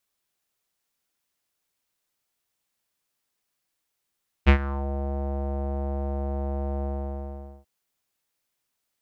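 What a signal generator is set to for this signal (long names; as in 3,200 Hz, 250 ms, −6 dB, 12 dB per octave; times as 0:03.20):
subtractive voice square C#2 12 dB per octave, low-pass 690 Hz, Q 3, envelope 2 octaves, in 0.39 s, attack 27 ms, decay 0.09 s, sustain −16.5 dB, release 0.81 s, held 2.38 s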